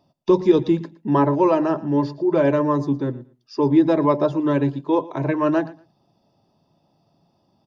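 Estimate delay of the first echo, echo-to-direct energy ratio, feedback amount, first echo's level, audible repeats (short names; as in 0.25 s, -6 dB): 0.115 s, -19.5 dB, 19%, -19.5 dB, 2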